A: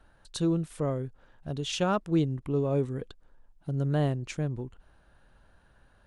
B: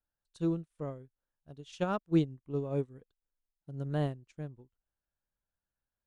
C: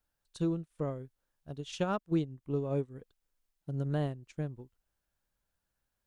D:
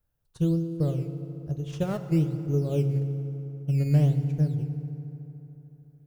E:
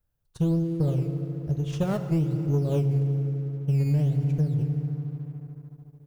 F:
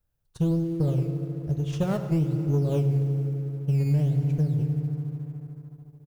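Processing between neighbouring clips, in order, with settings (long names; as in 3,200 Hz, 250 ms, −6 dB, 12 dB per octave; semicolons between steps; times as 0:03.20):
expander for the loud parts 2.5 to 1, over −43 dBFS
downward compressor 2.5 to 1, threshold −39 dBFS, peak gain reduction 12 dB; level +7.5 dB
octave-band graphic EQ 125/250/1,000/2,000/4,000/8,000 Hz +10/−9/−11/−5/−9/−8 dB; in parallel at −9 dB: sample-and-hold swept by an LFO 13×, swing 100% 1.1 Hz; on the sum: feedback delay network reverb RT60 3.4 s, high-frequency decay 0.55×, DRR 8 dB; level +4.5 dB
low-shelf EQ 170 Hz +3 dB; downward compressor, threshold −22 dBFS, peak gain reduction 8 dB; leveller curve on the samples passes 1
floating-point word with a short mantissa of 6 bits; single-tap delay 99 ms −16 dB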